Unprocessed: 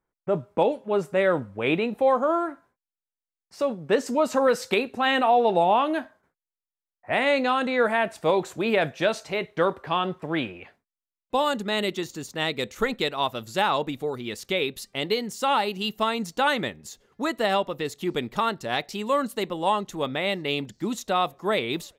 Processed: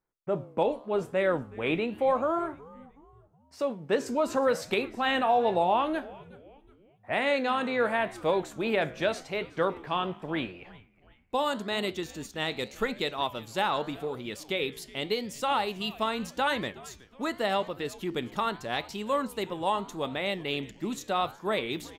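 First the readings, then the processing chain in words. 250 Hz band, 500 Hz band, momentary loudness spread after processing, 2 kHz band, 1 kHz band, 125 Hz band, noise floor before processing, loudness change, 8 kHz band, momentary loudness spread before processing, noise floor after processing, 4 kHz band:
-4.5 dB, -4.5 dB, 9 LU, -4.5 dB, -4.5 dB, -4.5 dB, under -85 dBFS, -4.5 dB, -4.5 dB, 8 LU, -61 dBFS, -4.5 dB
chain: frequency-shifting echo 369 ms, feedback 43%, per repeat -140 Hz, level -21 dB; flange 0.84 Hz, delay 9 ms, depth 9.4 ms, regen -86%

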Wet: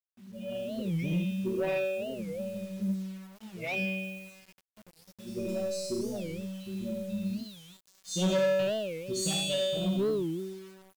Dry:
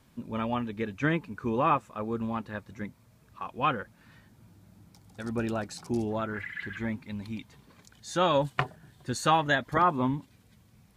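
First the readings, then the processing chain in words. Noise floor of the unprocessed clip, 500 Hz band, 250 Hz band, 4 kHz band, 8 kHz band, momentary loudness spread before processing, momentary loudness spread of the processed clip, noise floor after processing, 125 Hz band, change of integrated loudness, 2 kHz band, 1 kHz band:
-61 dBFS, +2.0 dB, -0.5 dB, +3.0 dB, +5.5 dB, 16 LU, 15 LU, -72 dBFS, -1.0 dB, -2.5 dB, -5.5 dB, -17.5 dB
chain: expander on every frequency bin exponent 1.5; feedback comb 190 Hz, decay 1.3 s, mix 100%; early reflections 57 ms -12 dB, 77 ms -4 dB; FFT band-reject 820–2400 Hz; in parallel at -3 dB: compression, threshold -58 dBFS, peak gain reduction 17 dB; on the sum: peaking EQ 180 Hz +9 dB 0.21 oct; saturation -40 dBFS, distortion -16 dB; waveshaping leveller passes 1; peaking EQ 780 Hz -12.5 dB 0.23 oct; bit crusher 12-bit; level rider gain up to 11 dB; warped record 45 rpm, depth 250 cents; trim +8 dB

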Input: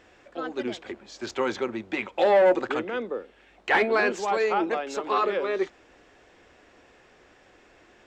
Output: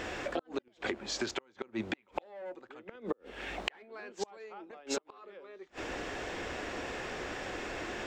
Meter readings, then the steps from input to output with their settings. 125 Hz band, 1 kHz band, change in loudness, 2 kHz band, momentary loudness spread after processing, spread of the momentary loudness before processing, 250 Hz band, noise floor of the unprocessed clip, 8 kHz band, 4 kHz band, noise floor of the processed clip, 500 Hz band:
no reading, -14.5 dB, -14.0 dB, -10.5 dB, 11 LU, 16 LU, -8.5 dB, -57 dBFS, +1.0 dB, -2.5 dB, -68 dBFS, -15.0 dB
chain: inverted gate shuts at -21 dBFS, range -40 dB; compression 16:1, threshold -49 dBFS, peak gain reduction 21 dB; trim +17 dB

